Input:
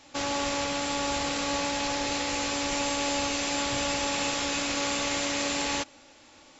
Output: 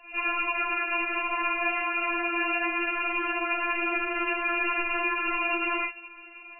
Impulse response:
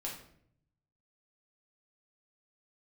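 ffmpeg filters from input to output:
-filter_complex "[0:a]highpass=41,asplit=2[link_01][link_02];[link_02]aeval=exprs='0.158*sin(PI/2*2.51*val(0)/0.158)':channel_layout=same,volume=-10.5dB[link_03];[link_01][link_03]amix=inputs=2:normalize=0,asubboost=boost=8:cutoff=110[link_04];[1:a]atrim=start_sample=2205,atrim=end_sample=3528[link_05];[link_04][link_05]afir=irnorm=-1:irlink=0,lowpass=frequency=2600:width_type=q:width=0.5098,lowpass=frequency=2600:width_type=q:width=0.6013,lowpass=frequency=2600:width_type=q:width=0.9,lowpass=frequency=2600:width_type=q:width=2.563,afreqshift=-3000,afftfilt=real='re*4*eq(mod(b,16),0)':imag='im*4*eq(mod(b,16),0)':win_size=2048:overlap=0.75,volume=6dB"

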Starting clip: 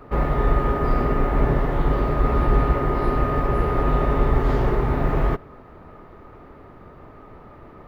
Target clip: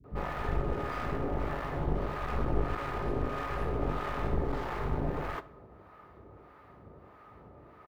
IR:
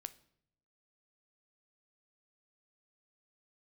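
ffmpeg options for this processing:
-filter_complex "[0:a]highpass=frequency=47:width=0.5412,highpass=frequency=47:width=1.3066,aeval=exprs='clip(val(0),-1,0.0501)':channel_layout=same,acrossover=split=740[link_01][link_02];[link_01]aeval=exprs='val(0)*(1-0.7/2+0.7/2*cos(2*PI*1.6*n/s))':channel_layout=same[link_03];[link_02]aeval=exprs='val(0)*(1-0.7/2-0.7/2*cos(2*PI*1.6*n/s))':channel_layout=same[link_04];[link_03][link_04]amix=inputs=2:normalize=0,acrossover=split=240[link_05][link_06];[link_06]adelay=40[link_07];[link_05][link_07]amix=inputs=2:normalize=0[link_08];[1:a]atrim=start_sample=2205,asetrate=83790,aresample=44100[link_09];[link_08][link_09]afir=irnorm=-1:irlink=0,volume=5dB"

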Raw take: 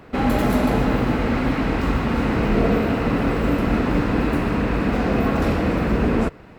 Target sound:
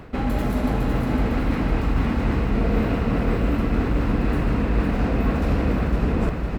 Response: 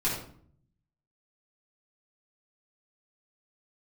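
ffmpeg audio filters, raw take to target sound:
-af "lowshelf=frequency=110:gain=10.5,areverse,acompressor=threshold=-28dB:ratio=5,areverse,aecho=1:1:506|1012|1518|2024|2530|3036:0.531|0.271|0.138|0.0704|0.0359|0.0183,volume=7dB"

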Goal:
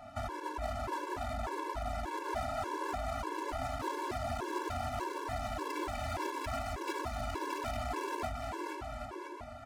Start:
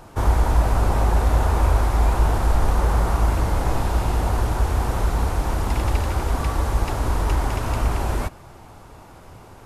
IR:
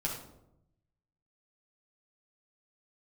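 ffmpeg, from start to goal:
-filter_complex "[0:a]alimiter=limit=-15.5dB:level=0:latency=1:release=80,aecho=1:1:460|782|1007|1165|1276:0.631|0.398|0.251|0.158|0.1,asplit=2[link_01][link_02];[1:a]atrim=start_sample=2205,adelay=18[link_03];[link_02][link_03]afir=irnorm=-1:irlink=0,volume=-12.5dB[link_04];[link_01][link_04]amix=inputs=2:normalize=0,volume=16.5dB,asoftclip=hard,volume=-16.5dB,aecho=1:1:3:0.63,adynamicsmooth=sensitivity=2.5:basefreq=2400,highpass=49,acompressor=threshold=-35dB:ratio=1.5,aemphasis=mode=production:type=bsi,afftfilt=real='re*gt(sin(2*PI*1.7*pts/sr)*(1-2*mod(floor(b*sr/1024/290),2)),0)':imag='im*gt(sin(2*PI*1.7*pts/sr)*(1-2*mod(floor(b*sr/1024/290),2)),0)':win_size=1024:overlap=0.75"

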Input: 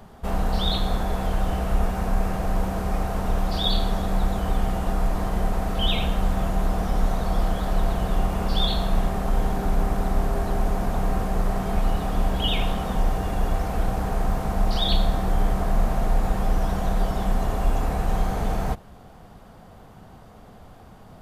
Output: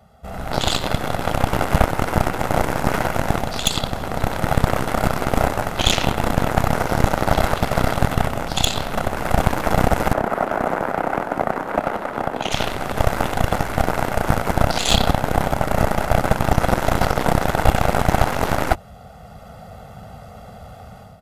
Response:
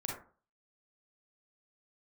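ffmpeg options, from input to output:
-filter_complex "[0:a]highpass=55,aecho=1:1:1.5:0.91,dynaudnorm=framelen=300:gausssize=3:maxgain=13.5dB,aeval=exprs='0.841*(cos(1*acos(clip(val(0)/0.841,-1,1)))-cos(1*PI/2))+0.211*(cos(2*acos(clip(val(0)/0.841,-1,1)))-cos(2*PI/2))+0.335*(cos(3*acos(clip(val(0)/0.841,-1,1)))-cos(3*PI/2))+0.00531*(cos(7*acos(clip(val(0)/0.841,-1,1)))-cos(7*PI/2))':channel_layout=same,aresample=32000,aresample=44100,acontrast=39,asettb=1/sr,asplit=3[link_01][link_02][link_03];[link_01]atrim=end=10.134[link_04];[link_02]atrim=start=10.13:end=12.52,asetpts=PTS-STARTPTS,afade=type=in:duration=0.004:curve=qsin,afade=type=out:start_time=2.386:duration=0.004:curve=qsin,acrossover=split=200 2100:gain=0.141 1 0.224[link_05][link_06][link_07];[link_05][link_06][link_07]amix=inputs=3:normalize=0[link_08];[link_03]atrim=start=12.516[link_09];[link_04][link_08]acrossfade=duration=0.004:curve1=hsin:curve2=qsin[link_10];[link_10][link_09]acrossfade=duration=0.004:curve1=qsin:curve2=hsin,volume=-1dB"

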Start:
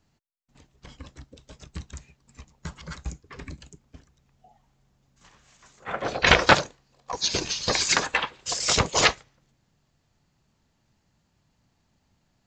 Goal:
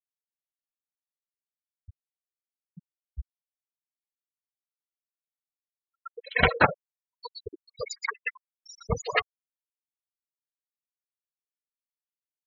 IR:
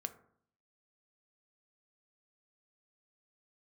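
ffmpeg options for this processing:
-filter_complex "[1:a]atrim=start_sample=2205[link_01];[0:a][link_01]afir=irnorm=-1:irlink=0,afftfilt=real='re*gte(hypot(re,im),0.224)':imag='im*gte(hypot(re,im),0.224)':win_size=1024:overlap=0.75,acrossover=split=4600[link_02][link_03];[link_02]adelay=120[link_04];[link_04][link_03]amix=inputs=2:normalize=0"

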